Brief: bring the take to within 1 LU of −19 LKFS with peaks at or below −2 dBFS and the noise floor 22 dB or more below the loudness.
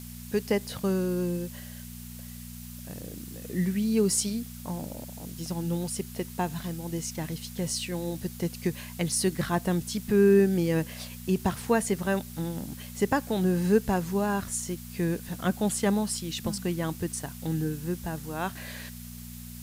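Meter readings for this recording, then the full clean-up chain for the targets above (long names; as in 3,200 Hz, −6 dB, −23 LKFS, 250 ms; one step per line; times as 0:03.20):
mains hum 60 Hz; hum harmonics up to 240 Hz; level of the hum −42 dBFS; background noise floor −42 dBFS; target noise floor −51 dBFS; integrated loudness −29.0 LKFS; sample peak −10.5 dBFS; target loudness −19.0 LKFS
→ hum removal 60 Hz, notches 4
broadband denoise 9 dB, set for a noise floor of −42 dBFS
level +10 dB
brickwall limiter −2 dBFS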